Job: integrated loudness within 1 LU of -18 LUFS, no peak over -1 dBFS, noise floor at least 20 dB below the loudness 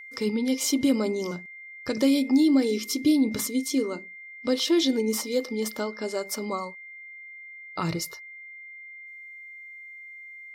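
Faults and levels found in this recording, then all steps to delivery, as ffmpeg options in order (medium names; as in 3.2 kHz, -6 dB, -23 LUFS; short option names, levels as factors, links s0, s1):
steady tone 2.1 kHz; tone level -41 dBFS; loudness -25.5 LUFS; peak level -11.0 dBFS; loudness target -18.0 LUFS
-> -af "bandreject=f=2100:w=30"
-af "volume=2.37"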